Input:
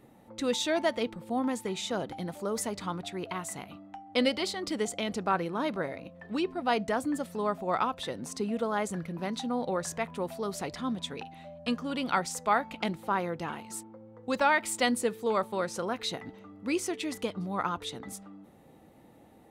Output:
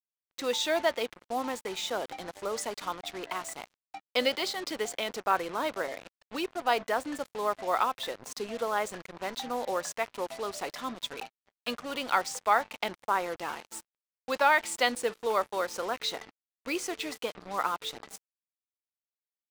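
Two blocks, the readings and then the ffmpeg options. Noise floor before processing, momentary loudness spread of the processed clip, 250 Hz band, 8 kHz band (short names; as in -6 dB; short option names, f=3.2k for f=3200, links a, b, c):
-57 dBFS, 12 LU, -8.0 dB, -0.5 dB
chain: -af "agate=range=-6dB:threshold=-44dB:ratio=16:detection=peak,highpass=450,lowpass=7.5k,acrusher=bits=6:mix=0:aa=0.5,volume=2dB"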